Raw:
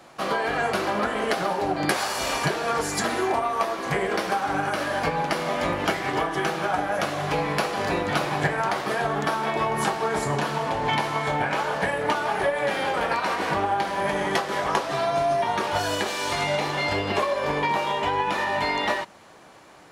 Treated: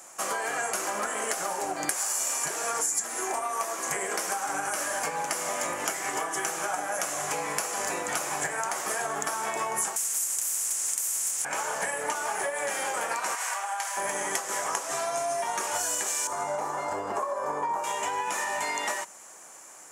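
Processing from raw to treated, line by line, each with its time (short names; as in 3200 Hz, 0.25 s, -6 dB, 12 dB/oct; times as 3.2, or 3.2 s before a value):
9.96–11.45 spectral compressor 10:1
13.35–13.97 Bessel high-pass 960 Hz, order 6
16.27–17.84 resonant high shelf 1700 Hz -13 dB, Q 1.5
whole clip: HPF 870 Hz 6 dB/oct; resonant high shelf 5400 Hz +11 dB, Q 3; compressor, threshold -26 dBFS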